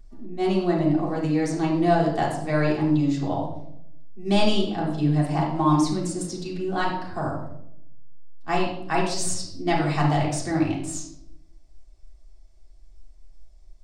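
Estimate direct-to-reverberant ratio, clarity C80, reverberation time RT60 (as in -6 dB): -5.0 dB, 7.5 dB, 0.75 s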